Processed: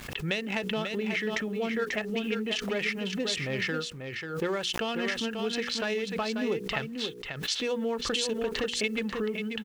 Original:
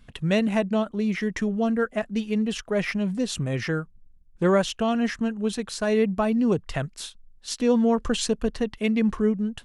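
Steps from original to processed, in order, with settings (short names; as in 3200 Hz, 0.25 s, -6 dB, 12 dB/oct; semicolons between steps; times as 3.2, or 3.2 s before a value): Wiener smoothing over 9 samples; weighting filter D; low-pass opened by the level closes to 2300 Hz, open at -17.5 dBFS; notches 60/120/180/240/300/360/420/480 Hz; comb 2.3 ms, depth 32%; compressor 8:1, threshold -25 dBFS, peak gain reduction 10 dB; bit-crush 10-bit; echo 0.54 s -6.5 dB; backwards sustainer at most 72 dB/s; gain -2 dB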